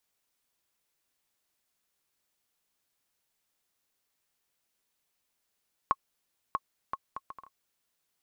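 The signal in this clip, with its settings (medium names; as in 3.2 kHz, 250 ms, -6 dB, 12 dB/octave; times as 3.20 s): bouncing ball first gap 0.64 s, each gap 0.6, 1.09 kHz, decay 42 ms -12.5 dBFS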